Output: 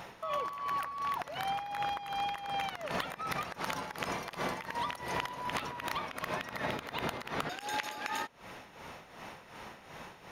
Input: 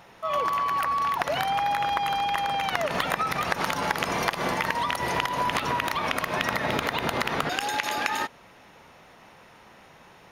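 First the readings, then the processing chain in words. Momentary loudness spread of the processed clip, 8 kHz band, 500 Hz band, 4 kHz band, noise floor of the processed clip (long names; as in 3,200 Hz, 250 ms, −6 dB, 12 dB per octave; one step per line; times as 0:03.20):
13 LU, −10.0 dB, −10.0 dB, −10.0 dB, −55 dBFS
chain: downward compressor 10 to 1, threshold −36 dBFS, peak gain reduction 17 dB
amplitude tremolo 2.7 Hz, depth 67%
level +5.5 dB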